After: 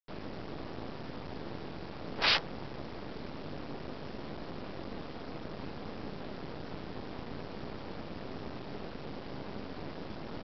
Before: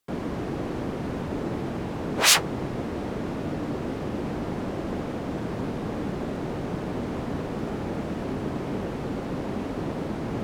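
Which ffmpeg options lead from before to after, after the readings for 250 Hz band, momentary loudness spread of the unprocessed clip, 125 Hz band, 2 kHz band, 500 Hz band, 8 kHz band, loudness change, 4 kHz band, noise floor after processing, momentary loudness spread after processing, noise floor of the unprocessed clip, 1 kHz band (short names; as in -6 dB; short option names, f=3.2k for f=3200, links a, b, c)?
-13.5 dB, 1 LU, -13.0 dB, -7.5 dB, -11.5 dB, -31.5 dB, -10.5 dB, -7.5 dB, -44 dBFS, 1 LU, -33 dBFS, -9.0 dB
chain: -af "bandreject=f=60:t=h:w=6,bandreject=f=120:t=h:w=6,bandreject=f=180:t=h:w=6,bandreject=f=240:t=h:w=6,bandreject=f=300:t=h:w=6,bandreject=f=360:t=h:w=6,aresample=11025,acrusher=bits=4:dc=4:mix=0:aa=0.000001,aresample=44100,volume=-7.5dB"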